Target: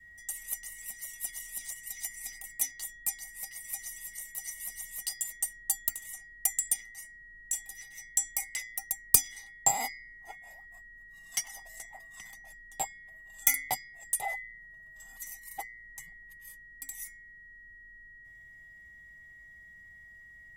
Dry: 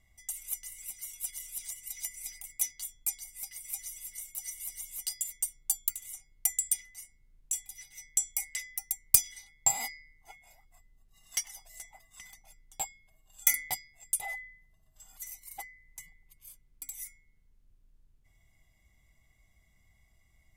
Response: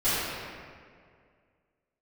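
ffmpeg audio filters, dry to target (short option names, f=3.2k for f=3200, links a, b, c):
-filter_complex "[0:a]aeval=exprs='val(0)+0.00316*sin(2*PI*1900*n/s)':c=same,acrossover=split=150|530|3500[a][b][c][d];[b]acontrast=68[e];[a][e][c][d]amix=inputs=4:normalize=0,adynamicequalizer=threshold=0.00158:dfrequency=780:dqfactor=0.8:tfrequency=780:tqfactor=0.8:attack=5:release=100:ratio=0.375:range=3:mode=boostabove:tftype=bell"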